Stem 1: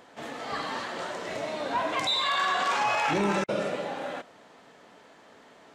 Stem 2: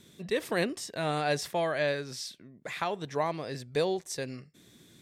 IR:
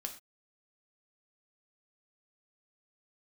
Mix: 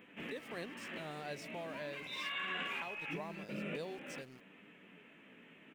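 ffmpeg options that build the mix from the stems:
-filter_complex "[0:a]firequalizer=gain_entry='entry(100,0);entry(170,11);entry(720,-8);entry(2600,14);entry(4400,-17);entry(13000,3)':delay=0.05:min_phase=1,acompressor=threshold=-27dB:ratio=6,flanger=delay=9.9:depth=9.5:regen=49:speed=0.43:shape=sinusoidal,volume=-5dB[a];[1:a]aeval=exprs='val(0)*gte(abs(val(0)),0.01)':c=same,highshelf=f=12k:g=-4.5,volume=-16dB,asplit=2[b][c];[c]apad=whole_len=257773[d];[a][d]sidechaincompress=threshold=-52dB:ratio=8:attack=23:release=390[e];[e][b]amix=inputs=2:normalize=0"

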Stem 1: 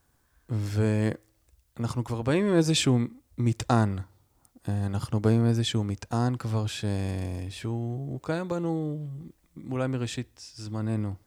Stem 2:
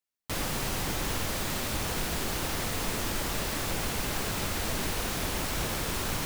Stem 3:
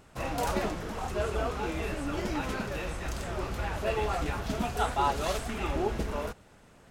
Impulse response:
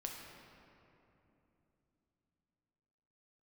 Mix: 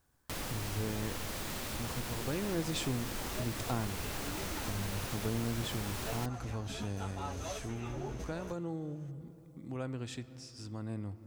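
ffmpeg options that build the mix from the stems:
-filter_complex "[0:a]volume=-7dB,asplit=3[a][b][c];[b]volume=-10dB[d];[1:a]volume=-3dB[e];[2:a]equalizer=f=6.2k:w=7.7:g=13.5,asplit=2[f][g];[g]adelay=11.6,afreqshift=1.1[h];[f][h]amix=inputs=2:normalize=1,adelay=2200,volume=-3dB[i];[c]apad=whole_len=401863[j];[i][j]sidechaincompress=threshold=-35dB:ratio=8:attack=30:release=573[k];[3:a]atrim=start_sample=2205[l];[d][l]afir=irnorm=-1:irlink=0[m];[a][e][k][m]amix=inputs=4:normalize=0,acompressor=threshold=-44dB:ratio=1.5"

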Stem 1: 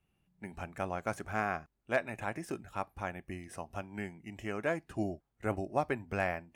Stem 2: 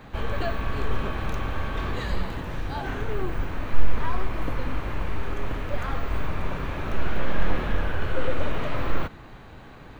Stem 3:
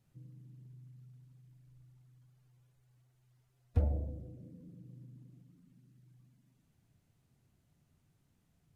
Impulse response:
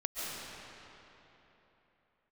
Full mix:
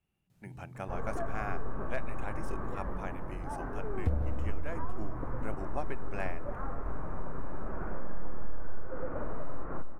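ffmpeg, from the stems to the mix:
-filter_complex "[0:a]volume=-4.5dB[a];[1:a]lowpass=f=1.4k:w=0.5412,lowpass=f=1.4k:w=1.3066,equalizer=f=75:t=o:w=1.2:g=-7,adelay=750,volume=-7.5dB,asplit=2[b][c];[c]volume=-16dB[d];[2:a]adelay=300,volume=1.5dB,asplit=2[e][f];[f]volume=-6dB[g];[3:a]atrim=start_sample=2205[h];[d][g]amix=inputs=2:normalize=0[i];[i][h]afir=irnorm=-1:irlink=0[j];[a][b][e][j]amix=inputs=4:normalize=0,acompressor=threshold=-25dB:ratio=3"

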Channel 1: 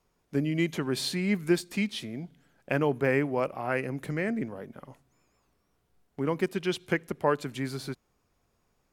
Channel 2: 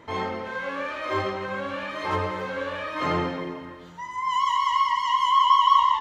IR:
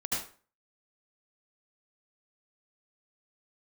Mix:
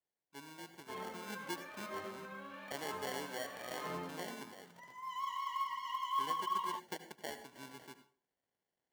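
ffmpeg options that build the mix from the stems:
-filter_complex "[0:a]acrusher=samples=35:mix=1:aa=0.000001,highpass=f=730:p=1,volume=-12dB,afade=t=in:st=0.87:d=0.56:silence=0.446684,asplit=2[a][b];[b]volume=-15dB[c];[1:a]highpass=f=110:w=0.5412,highpass=f=110:w=1.3066,aecho=1:1:4.6:0.49,acrusher=bits=6:mode=log:mix=0:aa=0.000001,adelay=800,volume=-18.5dB[d];[2:a]atrim=start_sample=2205[e];[c][e]afir=irnorm=-1:irlink=0[f];[a][d][f]amix=inputs=3:normalize=0,alimiter=level_in=1dB:limit=-24dB:level=0:latency=1:release=477,volume=-1dB"

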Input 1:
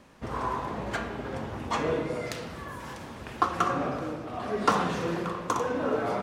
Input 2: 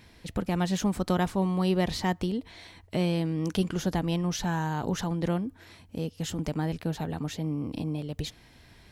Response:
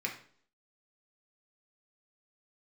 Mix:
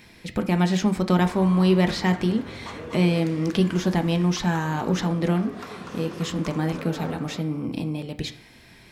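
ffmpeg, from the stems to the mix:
-filter_complex "[0:a]acompressor=threshold=-31dB:ratio=2.5,equalizer=f=760:w=1.5:g=-4,alimiter=limit=-21.5dB:level=0:latency=1:release=345,adelay=950,volume=-4dB,asplit=2[a][b];[b]volume=-3.5dB[c];[1:a]acrossover=split=6300[d][e];[e]acompressor=threshold=-53dB:ratio=4:attack=1:release=60[f];[d][f]amix=inputs=2:normalize=0,volume=2.5dB,asplit=2[g][h];[h]volume=-5dB[i];[2:a]atrim=start_sample=2205[j];[i][j]afir=irnorm=-1:irlink=0[k];[c]aecho=0:1:245|490|735|980|1225:1|0.36|0.13|0.0467|0.0168[l];[a][g][k][l]amix=inputs=4:normalize=0"

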